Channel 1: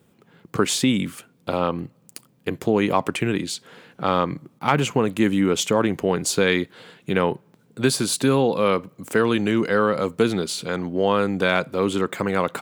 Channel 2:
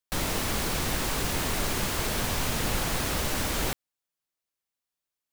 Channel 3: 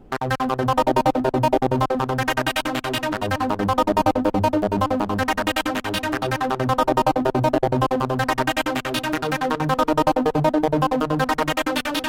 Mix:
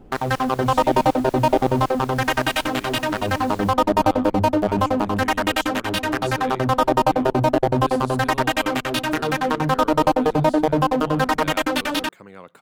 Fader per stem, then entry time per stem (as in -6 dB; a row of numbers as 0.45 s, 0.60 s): -19.5 dB, -16.0 dB, +1.0 dB; 0.00 s, 0.00 s, 0.00 s